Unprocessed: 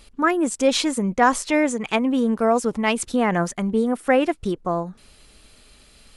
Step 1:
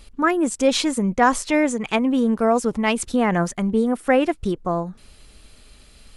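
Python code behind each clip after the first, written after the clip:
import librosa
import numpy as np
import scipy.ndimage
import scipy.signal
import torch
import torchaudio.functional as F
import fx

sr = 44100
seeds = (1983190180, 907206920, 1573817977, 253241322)

y = fx.low_shelf(x, sr, hz=130.0, db=6.0)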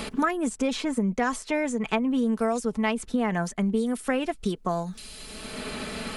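y = x + 0.42 * np.pad(x, (int(4.6 * sr / 1000.0), 0))[:len(x)]
y = fx.band_squash(y, sr, depth_pct=100)
y = y * 10.0 ** (-8.0 / 20.0)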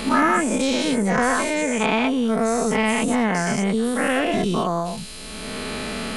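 y = fx.spec_dilate(x, sr, span_ms=240)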